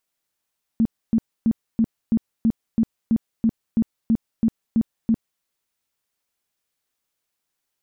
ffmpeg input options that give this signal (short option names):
-f lavfi -i "aevalsrc='0.2*sin(2*PI*226*mod(t,0.33))*lt(mod(t,0.33),12/226)':d=4.62:s=44100"